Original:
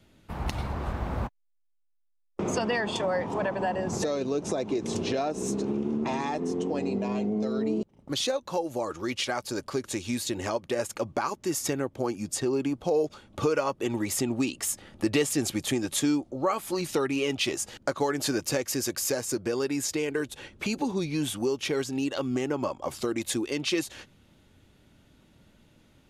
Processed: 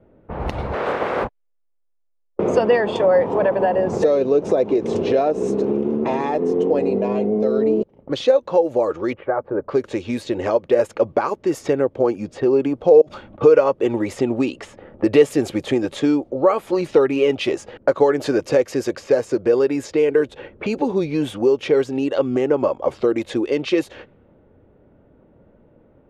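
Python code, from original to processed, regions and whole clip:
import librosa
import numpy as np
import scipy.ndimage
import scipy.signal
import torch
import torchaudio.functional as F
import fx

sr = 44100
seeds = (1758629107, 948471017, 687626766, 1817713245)

y = fx.spec_clip(x, sr, under_db=24, at=(0.72, 1.23), fade=0.02)
y = fx.highpass(y, sr, hz=230.0, slope=6, at=(0.72, 1.23), fade=0.02)
y = fx.doubler(y, sr, ms=29.0, db=-7.0, at=(0.72, 1.23), fade=0.02)
y = fx.chain(y, sr, fx.lowpass(hz=1500.0, slope=24),
    fx.notch(hz=240.0, q=7.1), at=(9.13, 9.69))
y = fx.chain(y, sr, fx.peak_eq(hz=450.0, db=-13.5, octaves=0.32),
    fx.over_compress(threshold_db=-46.0, ratio=-1.0), at=(13.01, 13.41))
y = fx.bass_treble(y, sr, bass_db=-1, treble_db=-13)
y = fx.env_lowpass(y, sr, base_hz=1100.0, full_db=-26.0)
y = fx.peak_eq(y, sr, hz=490.0, db=10.5, octaves=0.86)
y = F.gain(torch.from_numpy(y), 5.0).numpy()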